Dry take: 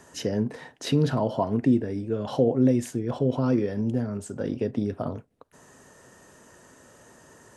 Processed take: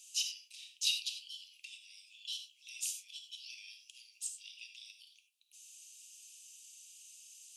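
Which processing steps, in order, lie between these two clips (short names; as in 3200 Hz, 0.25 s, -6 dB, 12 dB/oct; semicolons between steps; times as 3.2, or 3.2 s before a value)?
steep high-pass 2500 Hz 96 dB/oct; non-linear reverb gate 0.12 s flat, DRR 5.5 dB; gain +3 dB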